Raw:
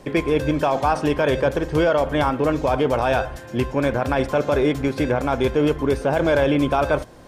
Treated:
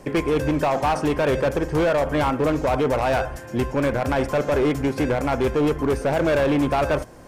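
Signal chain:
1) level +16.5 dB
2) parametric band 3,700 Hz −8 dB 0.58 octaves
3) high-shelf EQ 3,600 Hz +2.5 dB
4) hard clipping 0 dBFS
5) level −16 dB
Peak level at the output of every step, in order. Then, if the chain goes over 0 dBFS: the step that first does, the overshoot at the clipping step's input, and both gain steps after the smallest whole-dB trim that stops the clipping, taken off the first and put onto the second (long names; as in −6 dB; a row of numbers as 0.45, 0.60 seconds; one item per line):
+9.5, +9.5, +9.5, 0.0, −16.0 dBFS
step 1, 9.5 dB
step 1 +6.5 dB, step 5 −6 dB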